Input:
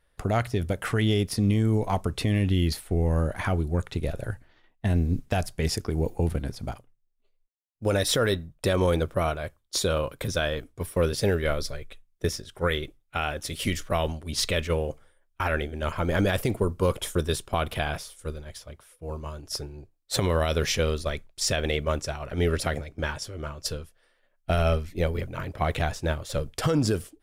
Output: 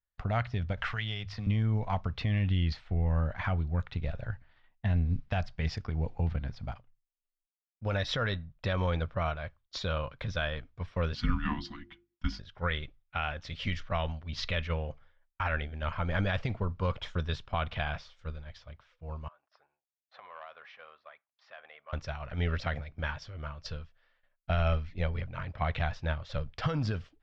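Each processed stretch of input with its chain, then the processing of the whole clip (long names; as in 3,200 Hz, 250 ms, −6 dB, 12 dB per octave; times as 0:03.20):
0:00.77–0:01.47: parametric band 240 Hz −12 dB 2.6 octaves + mains-hum notches 50/100/150 Hz + multiband upward and downward compressor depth 100%
0:11.15–0:12.39: frequency shifter −360 Hz + mains-hum notches 50/100/150/200/250 Hz + comb filter 4.1 ms, depth 46%
0:19.28–0:21.93: four-pole ladder band-pass 1,100 Hz, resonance 35% + notch filter 910 Hz, Q 9.9 + saturating transformer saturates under 880 Hz
whole clip: noise gate with hold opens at −56 dBFS; Bessel low-pass filter 3,000 Hz, order 8; parametric band 360 Hz −14.5 dB 1.2 octaves; level −2 dB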